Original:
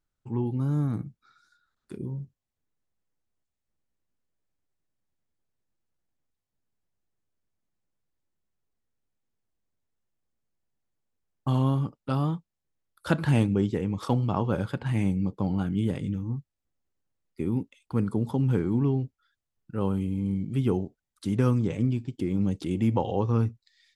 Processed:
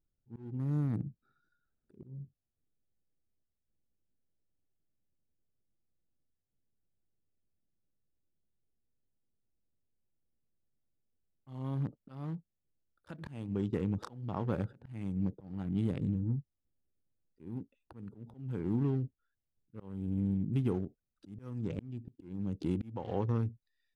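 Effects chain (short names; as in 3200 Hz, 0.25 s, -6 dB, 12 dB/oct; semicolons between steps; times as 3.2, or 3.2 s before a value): Wiener smoothing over 41 samples; compressor 4:1, threshold -28 dBFS, peak gain reduction 9.5 dB; auto swell 0.4 s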